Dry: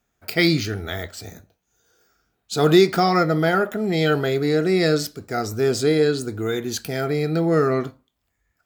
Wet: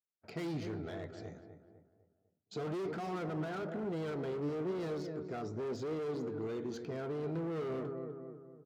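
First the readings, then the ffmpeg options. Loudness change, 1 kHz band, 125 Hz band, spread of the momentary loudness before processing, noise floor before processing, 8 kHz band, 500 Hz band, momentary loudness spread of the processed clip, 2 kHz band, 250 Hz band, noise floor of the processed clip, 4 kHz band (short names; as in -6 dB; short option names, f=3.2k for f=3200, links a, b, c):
-18.5 dB, -20.0 dB, -17.5 dB, 11 LU, -74 dBFS, under -25 dB, -17.5 dB, 10 LU, -23.5 dB, -17.5 dB, -79 dBFS, -26.5 dB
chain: -filter_complex "[0:a]aresample=16000,asoftclip=type=tanh:threshold=-15dB,aresample=44100,lowpass=f=2.5k:p=1,agate=range=-26dB:threshold=-49dB:ratio=16:detection=peak,lowshelf=f=250:g=-5.5,asplit=2[a][b];[b]adelay=250,lowpass=f=1.6k:p=1,volume=-11dB,asplit=2[c][d];[d]adelay=250,lowpass=f=1.6k:p=1,volume=0.47,asplit=2[e][f];[f]adelay=250,lowpass=f=1.6k:p=1,volume=0.47,asplit=2[g][h];[h]adelay=250,lowpass=f=1.6k:p=1,volume=0.47,asplit=2[i][j];[j]adelay=250,lowpass=f=1.6k:p=1,volume=0.47[k];[c][e][g][i][k]amix=inputs=5:normalize=0[l];[a][l]amix=inputs=2:normalize=0,volume=27dB,asoftclip=hard,volume=-27dB,acompressor=threshold=-30dB:ratio=6,highpass=100,flanger=delay=1.8:depth=5.2:regen=85:speed=1:shape=sinusoidal,tiltshelf=f=970:g=6,volume=-5.5dB"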